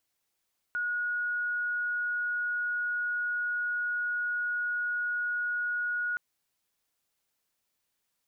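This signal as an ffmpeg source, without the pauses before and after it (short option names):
-f lavfi -i "sine=f=1450:d=5.42:r=44100,volume=-9.94dB"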